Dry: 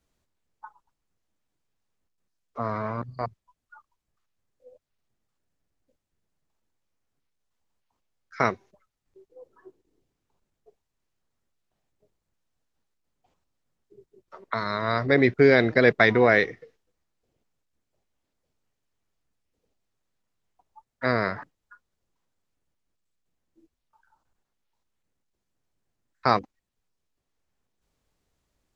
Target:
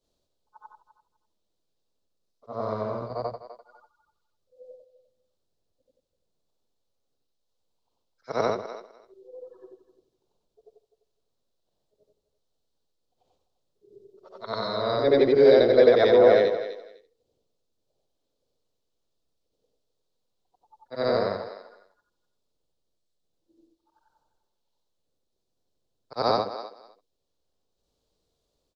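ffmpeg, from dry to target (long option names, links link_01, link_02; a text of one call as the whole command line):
ffmpeg -i in.wav -filter_complex "[0:a]afftfilt=real='re':imag='-im':win_size=8192:overlap=0.75,equalizer=frequency=500:width_type=o:width=1:gain=10,equalizer=frequency=2000:width_type=o:width=1:gain=-11,equalizer=frequency=4000:width_type=o:width=1:gain=11,acrossover=split=270[link_01][link_02];[link_01]asoftclip=type=tanh:threshold=-35dB[link_03];[link_02]aecho=1:1:252|504:0.224|0.0358[link_04];[link_03][link_04]amix=inputs=2:normalize=0,adynamicequalizer=threshold=0.0126:dfrequency=2700:dqfactor=0.7:tfrequency=2700:tqfactor=0.7:attack=5:release=100:ratio=0.375:range=2.5:mode=cutabove:tftype=highshelf,volume=1dB" out.wav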